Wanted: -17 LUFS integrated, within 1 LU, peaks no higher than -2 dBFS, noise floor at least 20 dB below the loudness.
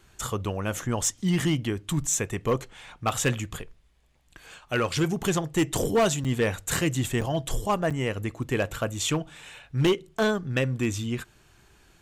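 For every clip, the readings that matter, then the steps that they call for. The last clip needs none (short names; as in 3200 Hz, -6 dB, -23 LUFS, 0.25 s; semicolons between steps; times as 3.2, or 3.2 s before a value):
clipped 0.8%; flat tops at -17.0 dBFS; dropouts 3; longest dropout 6.7 ms; loudness -27.0 LUFS; peak -17.0 dBFS; loudness target -17.0 LUFS
-> clip repair -17 dBFS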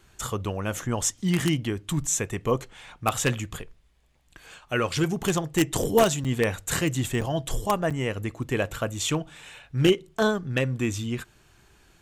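clipped 0.0%; dropouts 3; longest dropout 6.7 ms
-> interpolate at 6.24/7.21/7.9, 6.7 ms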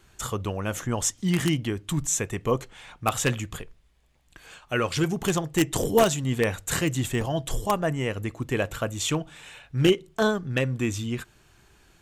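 dropouts 0; loudness -26.5 LUFS; peak -8.0 dBFS; loudness target -17.0 LUFS
-> gain +9.5 dB; limiter -2 dBFS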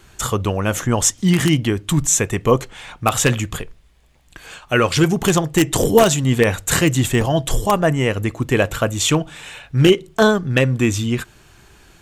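loudness -17.5 LUFS; peak -2.0 dBFS; noise floor -51 dBFS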